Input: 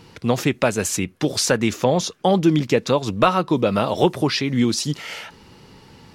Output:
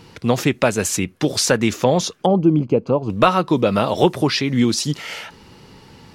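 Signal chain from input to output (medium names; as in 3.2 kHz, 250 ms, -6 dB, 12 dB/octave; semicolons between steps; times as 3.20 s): 2.26–3.10 s: boxcar filter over 24 samples; trim +2 dB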